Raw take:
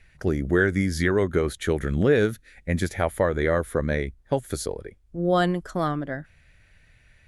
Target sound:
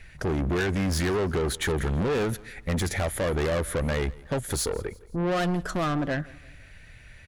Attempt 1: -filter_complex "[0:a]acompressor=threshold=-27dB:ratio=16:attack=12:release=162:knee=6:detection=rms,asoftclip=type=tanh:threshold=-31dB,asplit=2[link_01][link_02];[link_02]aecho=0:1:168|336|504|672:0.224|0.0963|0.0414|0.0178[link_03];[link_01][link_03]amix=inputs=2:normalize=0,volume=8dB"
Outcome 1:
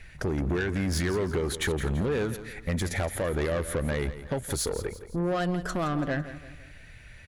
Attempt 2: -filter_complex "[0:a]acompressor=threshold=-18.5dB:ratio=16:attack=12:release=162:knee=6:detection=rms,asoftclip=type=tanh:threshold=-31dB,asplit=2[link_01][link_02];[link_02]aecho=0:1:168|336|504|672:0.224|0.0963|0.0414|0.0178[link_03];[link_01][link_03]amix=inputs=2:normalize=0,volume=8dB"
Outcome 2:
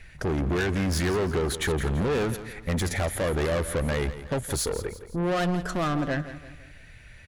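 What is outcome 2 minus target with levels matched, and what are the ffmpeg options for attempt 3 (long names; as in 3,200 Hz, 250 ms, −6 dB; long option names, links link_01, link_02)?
echo-to-direct +9 dB
-filter_complex "[0:a]acompressor=threshold=-18.5dB:ratio=16:attack=12:release=162:knee=6:detection=rms,asoftclip=type=tanh:threshold=-31dB,asplit=2[link_01][link_02];[link_02]aecho=0:1:168|336|504:0.0794|0.0342|0.0147[link_03];[link_01][link_03]amix=inputs=2:normalize=0,volume=8dB"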